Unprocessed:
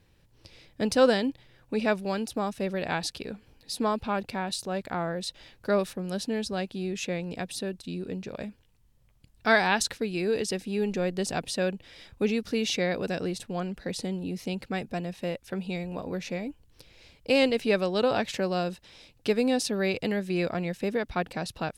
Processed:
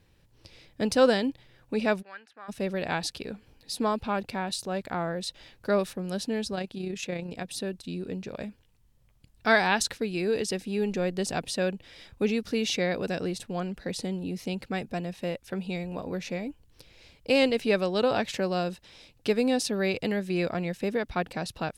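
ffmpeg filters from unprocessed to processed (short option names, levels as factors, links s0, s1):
-filter_complex "[0:a]asplit=3[s0][s1][s2];[s0]afade=t=out:st=2.01:d=0.02[s3];[s1]bandpass=f=1700:t=q:w=4,afade=t=in:st=2.01:d=0.02,afade=t=out:st=2.48:d=0.02[s4];[s2]afade=t=in:st=2.48:d=0.02[s5];[s3][s4][s5]amix=inputs=3:normalize=0,asettb=1/sr,asplit=3[s6][s7][s8];[s6]atrim=end=6.554[s9];[s7]atrim=start=6.55:end=7.52,asetpts=PTS-STARTPTS,afade=t=in:d=0.004:c=qsin,afade=t=out:st=0.966:d=0.004:c=qsin,tremolo=f=31:d=0.462[s10];[s8]atrim=start=7.516[s11];[s9][s10]acrossfade=d=0.004:c1=hsin:c2=qsin[s12];[s12][s11]acrossfade=d=0.004:c1=qsin:c2=hsin"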